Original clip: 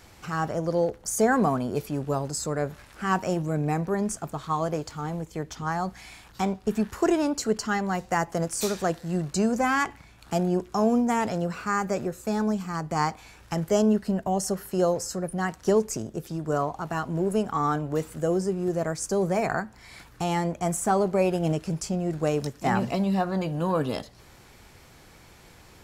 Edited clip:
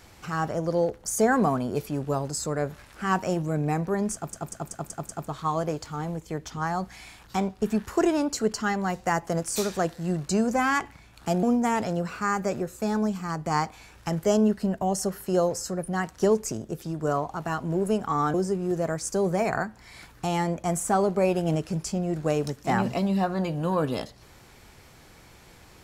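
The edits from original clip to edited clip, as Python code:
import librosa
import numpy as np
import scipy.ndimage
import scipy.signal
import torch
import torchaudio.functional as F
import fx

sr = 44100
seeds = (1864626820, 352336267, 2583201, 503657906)

y = fx.edit(x, sr, fx.stutter(start_s=4.14, slice_s=0.19, count=6),
    fx.cut(start_s=10.48, length_s=0.4),
    fx.cut(start_s=17.79, length_s=0.52), tone=tone)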